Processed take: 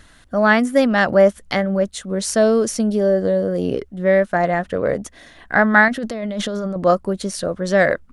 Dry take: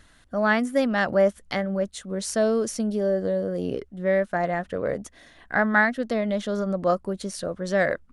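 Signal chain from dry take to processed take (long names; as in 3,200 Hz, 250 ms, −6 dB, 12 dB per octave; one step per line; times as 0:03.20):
0:05.88–0:06.76: compressor whose output falls as the input rises −31 dBFS, ratio −1
level +7 dB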